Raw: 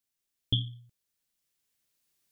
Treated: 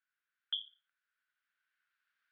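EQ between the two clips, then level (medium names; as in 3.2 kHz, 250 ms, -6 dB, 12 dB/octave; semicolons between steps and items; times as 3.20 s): ladder high-pass 1.4 kHz, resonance 80%; distance through air 390 m; +13.5 dB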